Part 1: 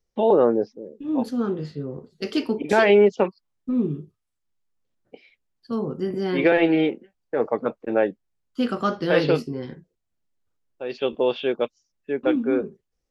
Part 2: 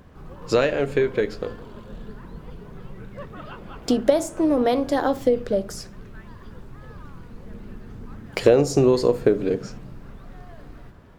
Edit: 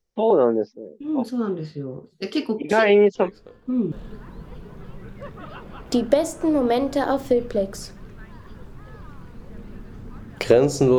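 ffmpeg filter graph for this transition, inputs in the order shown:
-filter_complex "[1:a]asplit=2[a][b];[0:a]apad=whole_dur=10.98,atrim=end=10.98,atrim=end=3.922[c];[b]atrim=start=1.878:end=8.94[d];[a]atrim=start=1.11:end=1.88,asetpts=PTS-STARTPTS,volume=-16dB,afade=t=in:d=0.004:c=hsin,afade=t=out:st=0.766:d=0.004:c=hsin,adelay=3150[e];[c][d]acrossfade=d=0.004:c1=hsin:c2=hsin[f];[f][e]amix=inputs=2:normalize=0"

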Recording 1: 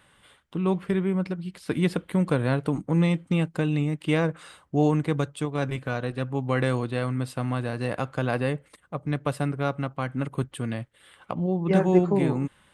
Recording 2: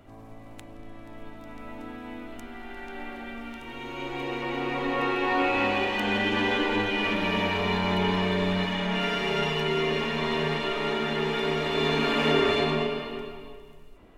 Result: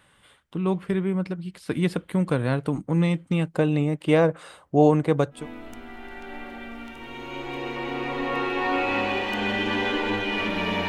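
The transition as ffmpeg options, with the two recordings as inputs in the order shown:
-filter_complex "[0:a]asettb=1/sr,asplit=3[a][b][c];[a]atrim=end=3.534[d];[b]atrim=start=3.53:end=5.48,asetpts=PTS-STARTPTS,afade=t=in:d=0.004:c=qsin,afade=t=out:st=1.946:d=0.004:c=qsin,equalizer=f=590:t=o:w=1.5:g=8.5[e];[c]atrim=start=5.476[f];[d][e]acrossfade=d=0.004:c1=hsin:c2=qsin[g];[g][f]acrossfade=d=0.004:c1=qsin:c2=hsin,apad=whole_dur=10.88,atrim=end=10.88,atrim=end=5.48,asetpts=PTS-STARTPTS[h];[1:a]atrim=start=1.96:end=7.54,asetpts=PTS-STARTPTS[i];[h][i]acrossfade=d=0.18:c1=tri:c2=tri"

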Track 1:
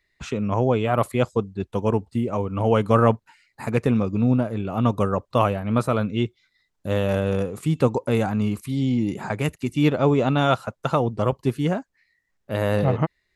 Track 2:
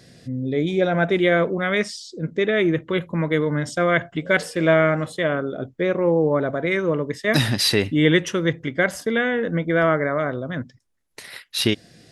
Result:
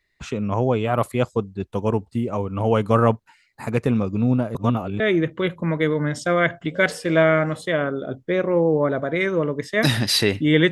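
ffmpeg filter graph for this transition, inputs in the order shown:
-filter_complex "[0:a]apad=whole_dur=10.71,atrim=end=10.71,asplit=2[a][b];[a]atrim=end=4.552[c];[b]atrim=start=4.548:end=5.002,asetpts=PTS-STARTPTS,areverse[d];[1:a]atrim=start=2.508:end=8.22[e];[c][d]acrossfade=d=0.004:c1=hsin:c2=hsin[f];[f][e]acrossfade=d=0.004:c1=hsin:c2=hsin"

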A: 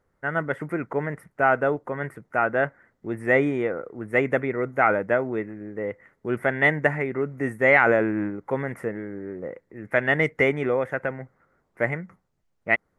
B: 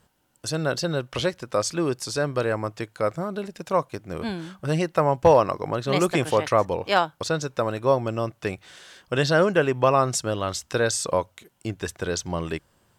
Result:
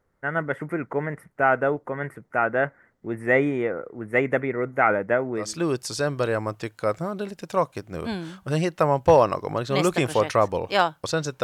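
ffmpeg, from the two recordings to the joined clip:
-filter_complex "[0:a]apad=whole_dur=11.43,atrim=end=11.43,atrim=end=5.6,asetpts=PTS-STARTPTS[a];[1:a]atrim=start=1.51:end=7.6,asetpts=PTS-STARTPTS[b];[a][b]acrossfade=d=0.26:c1=tri:c2=tri"

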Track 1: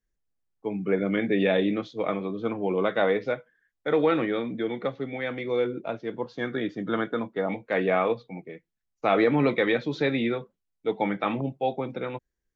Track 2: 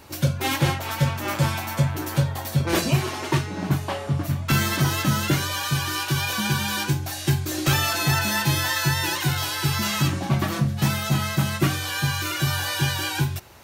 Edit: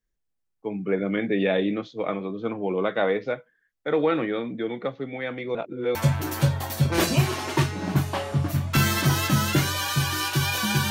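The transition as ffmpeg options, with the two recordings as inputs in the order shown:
-filter_complex "[0:a]apad=whole_dur=10.9,atrim=end=10.9,asplit=2[a][b];[a]atrim=end=5.552[c];[b]atrim=start=5.548:end=5.952,asetpts=PTS-STARTPTS,areverse[d];[1:a]atrim=start=1.698:end=6.65[e];[c][d]acrossfade=d=0.004:c1=hsin:c2=hsin[f];[f][e]acrossfade=d=0.004:c1=hsin:c2=hsin"

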